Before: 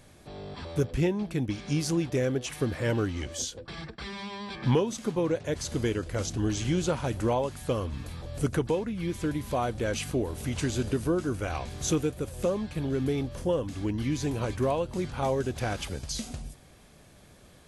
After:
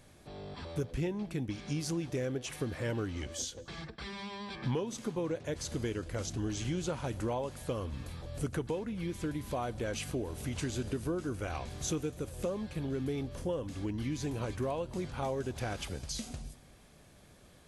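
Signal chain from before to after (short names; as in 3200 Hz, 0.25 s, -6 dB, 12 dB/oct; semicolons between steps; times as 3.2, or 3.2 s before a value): compressor 2:1, threshold -29 dBFS, peak gain reduction 5.5 dB; on a send: reverb, pre-delay 3 ms, DRR 22 dB; on the sum: gain -4 dB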